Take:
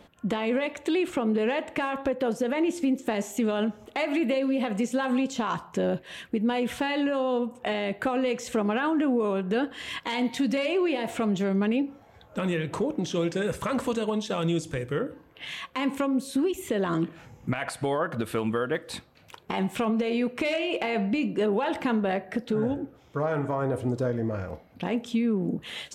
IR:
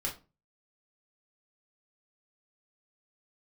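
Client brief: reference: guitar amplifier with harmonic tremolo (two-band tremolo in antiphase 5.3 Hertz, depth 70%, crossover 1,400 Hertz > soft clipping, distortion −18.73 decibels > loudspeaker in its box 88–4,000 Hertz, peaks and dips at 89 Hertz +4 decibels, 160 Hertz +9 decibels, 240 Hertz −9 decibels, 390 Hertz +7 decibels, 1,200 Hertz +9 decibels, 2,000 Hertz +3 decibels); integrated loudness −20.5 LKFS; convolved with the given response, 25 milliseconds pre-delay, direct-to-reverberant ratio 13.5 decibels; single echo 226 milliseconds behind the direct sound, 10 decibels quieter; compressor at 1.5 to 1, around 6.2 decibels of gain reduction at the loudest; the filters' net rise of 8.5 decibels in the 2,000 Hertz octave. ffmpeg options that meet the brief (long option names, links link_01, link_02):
-filter_complex "[0:a]equalizer=frequency=2000:width_type=o:gain=7.5,acompressor=threshold=-39dB:ratio=1.5,aecho=1:1:226:0.316,asplit=2[link_01][link_02];[1:a]atrim=start_sample=2205,adelay=25[link_03];[link_02][link_03]afir=irnorm=-1:irlink=0,volume=-16.5dB[link_04];[link_01][link_04]amix=inputs=2:normalize=0,acrossover=split=1400[link_05][link_06];[link_05]aeval=exprs='val(0)*(1-0.7/2+0.7/2*cos(2*PI*5.3*n/s))':channel_layout=same[link_07];[link_06]aeval=exprs='val(0)*(1-0.7/2-0.7/2*cos(2*PI*5.3*n/s))':channel_layout=same[link_08];[link_07][link_08]amix=inputs=2:normalize=0,asoftclip=threshold=-26.5dB,highpass=88,equalizer=frequency=89:width_type=q:width=4:gain=4,equalizer=frequency=160:width_type=q:width=4:gain=9,equalizer=frequency=240:width_type=q:width=4:gain=-9,equalizer=frequency=390:width_type=q:width=4:gain=7,equalizer=frequency=1200:width_type=q:width=4:gain=9,equalizer=frequency=2000:width_type=q:width=4:gain=3,lowpass=frequency=4000:width=0.5412,lowpass=frequency=4000:width=1.3066,volume=14.5dB"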